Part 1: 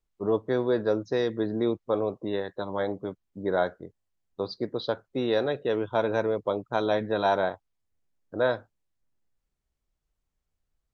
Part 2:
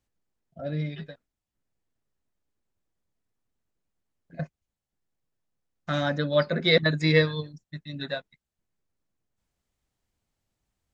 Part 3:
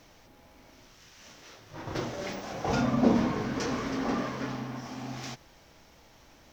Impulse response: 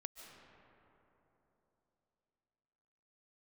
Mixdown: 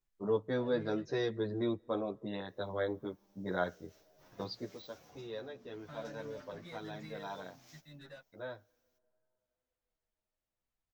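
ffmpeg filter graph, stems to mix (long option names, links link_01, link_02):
-filter_complex "[0:a]volume=-1dB,afade=type=out:start_time=4.51:duration=0.26:silence=0.251189,asplit=2[link_01][link_02];[link_02]volume=-22.5dB[link_03];[1:a]acompressor=threshold=-27dB:ratio=6,asplit=2[link_04][link_05];[link_05]highpass=frequency=720:poles=1,volume=17dB,asoftclip=type=tanh:threshold=-25.5dB[link_06];[link_04][link_06]amix=inputs=2:normalize=0,lowpass=frequency=1200:poles=1,volume=-6dB,volume=-11.5dB[link_07];[2:a]aemphasis=mode=production:type=50fm,agate=range=-33dB:threshold=-45dB:ratio=3:detection=peak,acompressor=threshold=-34dB:ratio=16,adelay=2450,volume=-17dB[link_08];[3:a]atrim=start_sample=2205[link_09];[link_03][link_09]afir=irnorm=-1:irlink=0[link_10];[link_01][link_07][link_08][link_10]amix=inputs=4:normalize=0,equalizer=frequency=530:width=0.31:gain=-4,asplit=2[link_11][link_12];[link_12]adelay=10.3,afreqshift=-1[link_13];[link_11][link_13]amix=inputs=2:normalize=1"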